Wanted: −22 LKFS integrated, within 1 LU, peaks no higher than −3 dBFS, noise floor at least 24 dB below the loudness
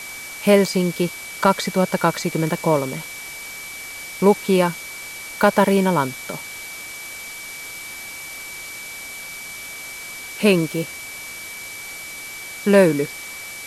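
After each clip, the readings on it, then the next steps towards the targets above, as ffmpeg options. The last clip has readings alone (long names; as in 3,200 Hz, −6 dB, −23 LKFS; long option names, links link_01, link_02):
interfering tone 2,300 Hz; level of the tone −34 dBFS; background noise floor −35 dBFS; target noise floor −47 dBFS; integrated loudness −22.5 LKFS; sample peak −1.0 dBFS; target loudness −22.0 LKFS
→ -af "bandreject=frequency=2300:width=30"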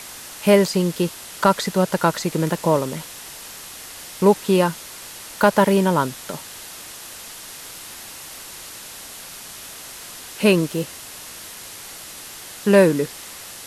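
interfering tone none found; background noise floor −38 dBFS; target noise floor −44 dBFS
→ -af "afftdn=noise_reduction=6:noise_floor=-38"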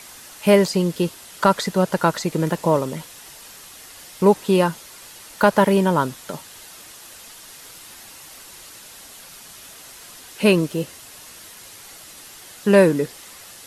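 background noise floor −43 dBFS; target noise floor −44 dBFS
→ -af "afftdn=noise_reduction=6:noise_floor=-43"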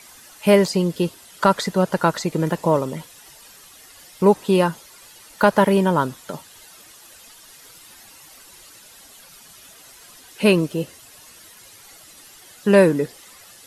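background noise floor −47 dBFS; integrated loudness −19.5 LKFS; sample peak −1.5 dBFS; target loudness −22.0 LKFS
→ -af "volume=-2.5dB"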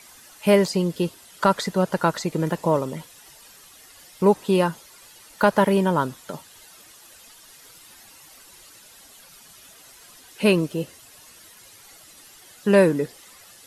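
integrated loudness −22.0 LKFS; sample peak −4.0 dBFS; background noise floor −49 dBFS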